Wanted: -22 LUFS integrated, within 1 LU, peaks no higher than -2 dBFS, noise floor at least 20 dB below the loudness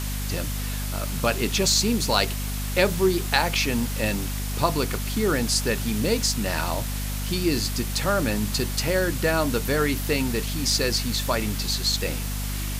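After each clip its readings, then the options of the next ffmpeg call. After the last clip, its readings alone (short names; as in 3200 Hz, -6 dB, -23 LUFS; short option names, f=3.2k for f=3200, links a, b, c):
hum 50 Hz; harmonics up to 250 Hz; hum level -27 dBFS; noise floor -29 dBFS; noise floor target -44 dBFS; loudness -24.0 LUFS; peak -4.0 dBFS; loudness target -22.0 LUFS
-> -af "bandreject=f=50:t=h:w=6,bandreject=f=100:t=h:w=6,bandreject=f=150:t=h:w=6,bandreject=f=200:t=h:w=6,bandreject=f=250:t=h:w=6"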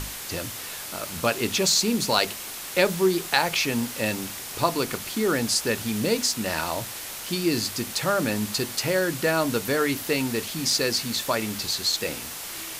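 hum none; noise floor -36 dBFS; noise floor target -45 dBFS
-> -af "afftdn=nr=9:nf=-36"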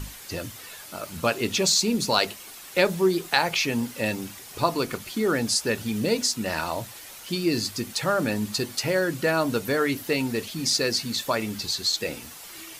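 noise floor -43 dBFS; noise floor target -45 dBFS
-> -af "afftdn=nr=6:nf=-43"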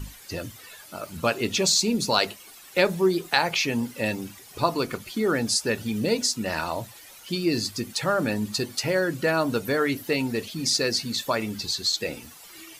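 noise floor -47 dBFS; loudness -25.0 LUFS; peak -4.0 dBFS; loudness target -22.0 LUFS
-> -af "volume=3dB,alimiter=limit=-2dB:level=0:latency=1"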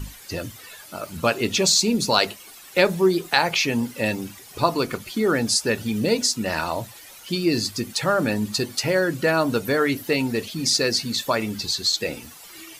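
loudness -22.0 LUFS; peak -2.0 dBFS; noise floor -44 dBFS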